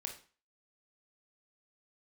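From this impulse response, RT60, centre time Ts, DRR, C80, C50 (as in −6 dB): 0.40 s, 16 ms, 2.5 dB, 14.5 dB, 9.0 dB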